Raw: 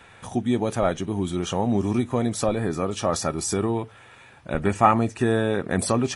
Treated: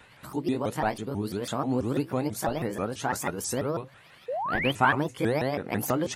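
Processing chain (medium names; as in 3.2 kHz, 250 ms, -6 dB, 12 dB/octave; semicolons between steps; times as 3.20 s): sawtooth pitch modulation +6.5 st, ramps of 164 ms; wow and flutter 120 cents; painted sound rise, 4.28–4.72 s, 460–3300 Hz -26 dBFS; trim -4 dB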